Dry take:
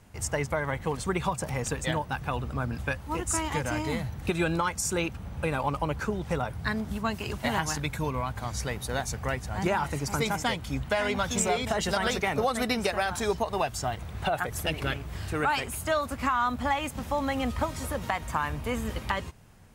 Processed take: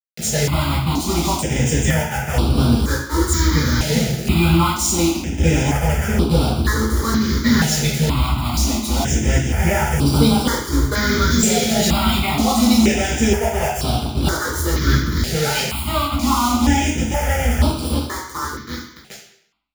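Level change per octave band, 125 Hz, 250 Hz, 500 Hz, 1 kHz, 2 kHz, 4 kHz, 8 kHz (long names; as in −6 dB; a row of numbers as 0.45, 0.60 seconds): +14.5, +14.5, +7.0, +6.5, +7.5, +13.0, +12.5 decibels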